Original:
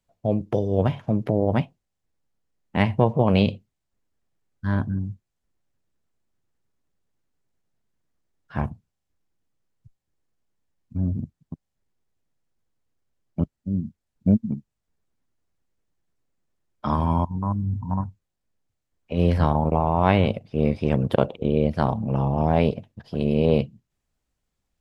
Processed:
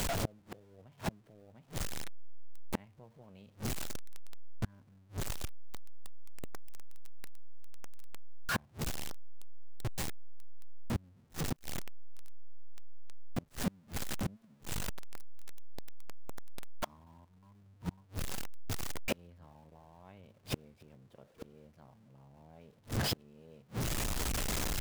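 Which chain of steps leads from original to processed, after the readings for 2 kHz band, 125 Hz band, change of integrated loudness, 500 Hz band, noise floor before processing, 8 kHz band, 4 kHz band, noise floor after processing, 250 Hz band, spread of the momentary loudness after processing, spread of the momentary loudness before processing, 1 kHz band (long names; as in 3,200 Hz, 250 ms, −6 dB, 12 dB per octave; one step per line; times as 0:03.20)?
−7.0 dB, −17.5 dB, −16.0 dB, −20.5 dB, −81 dBFS, can't be measured, −2.5 dB, −64 dBFS, −19.0 dB, 23 LU, 14 LU, −17.5 dB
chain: converter with a step at zero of −25 dBFS
gate with flip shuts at −20 dBFS, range −36 dB
level −2 dB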